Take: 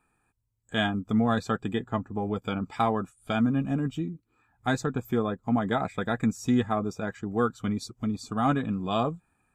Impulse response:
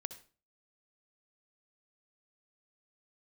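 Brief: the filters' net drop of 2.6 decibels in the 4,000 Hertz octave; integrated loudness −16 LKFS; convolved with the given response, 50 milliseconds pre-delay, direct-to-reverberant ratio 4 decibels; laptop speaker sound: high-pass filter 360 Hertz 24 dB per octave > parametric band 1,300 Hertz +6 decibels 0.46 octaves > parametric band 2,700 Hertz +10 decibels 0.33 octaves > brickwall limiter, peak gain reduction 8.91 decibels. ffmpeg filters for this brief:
-filter_complex "[0:a]equalizer=frequency=4000:width_type=o:gain=-7.5,asplit=2[link_01][link_02];[1:a]atrim=start_sample=2205,adelay=50[link_03];[link_02][link_03]afir=irnorm=-1:irlink=0,volume=-1.5dB[link_04];[link_01][link_04]amix=inputs=2:normalize=0,highpass=frequency=360:width=0.5412,highpass=frequency=360:width=1.3066,equalizer=frequency=1300:width_type=o:width=0.46:gain=6,equalizer=frequency=2700:width_type=o:width=0.33:gain=10,volume=16.5dB,alimiter=limit=-3dB:level=0:latency=1"

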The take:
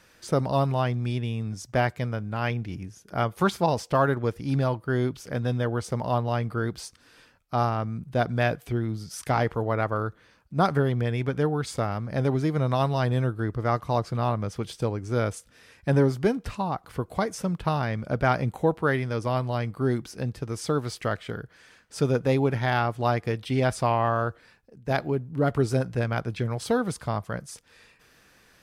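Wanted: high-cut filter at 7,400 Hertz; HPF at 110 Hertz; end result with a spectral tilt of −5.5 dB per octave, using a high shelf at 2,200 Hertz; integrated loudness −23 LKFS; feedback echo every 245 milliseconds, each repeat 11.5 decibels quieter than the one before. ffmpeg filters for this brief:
ffmpeg -i in.wav -af "highpass=110,lowpass=7400,highshelf=frequency=2200:gain=8.5,aecho=1:1:245|490|735:0.266|0.0718|0.0194,volume=3.5dB" out.wav

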